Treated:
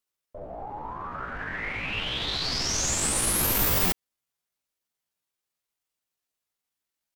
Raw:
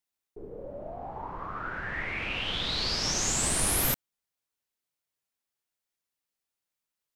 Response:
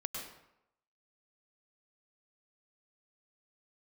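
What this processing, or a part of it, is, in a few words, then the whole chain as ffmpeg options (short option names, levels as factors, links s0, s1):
chipmunk voice: -af "asetrate=64194,aresample=44100,atempo=0.686977,volume=1.5"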